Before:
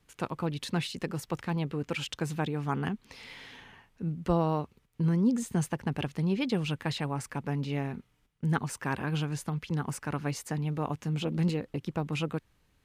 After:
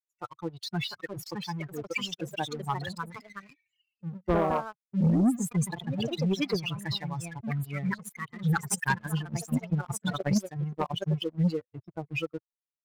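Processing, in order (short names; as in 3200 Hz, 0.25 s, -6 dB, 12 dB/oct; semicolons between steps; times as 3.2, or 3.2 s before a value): per-bin expansion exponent 3; echoes that change speed 0.732 s, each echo +3 st, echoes 2, each echo -6 dB; 8.67–11.24 transient shaper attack +12 dB, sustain -5 dB; sample leveller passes 2; gain +1.5 dB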